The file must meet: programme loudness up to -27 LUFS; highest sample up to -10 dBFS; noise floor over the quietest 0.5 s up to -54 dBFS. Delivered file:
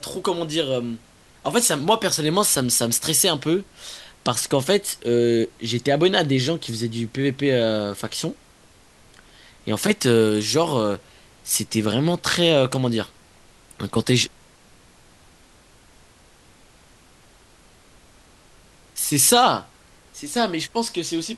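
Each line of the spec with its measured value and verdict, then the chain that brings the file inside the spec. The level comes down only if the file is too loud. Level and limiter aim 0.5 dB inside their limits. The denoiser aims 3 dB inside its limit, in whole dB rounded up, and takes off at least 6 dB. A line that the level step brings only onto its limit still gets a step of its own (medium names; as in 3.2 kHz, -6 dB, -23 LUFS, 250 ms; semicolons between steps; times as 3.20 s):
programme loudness -21.0 LUFS: fail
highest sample -2.5 dBFS: fail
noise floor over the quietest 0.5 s -52 dBFS: fail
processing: trim -6.5 dB; peak limiter -10.5 dBFS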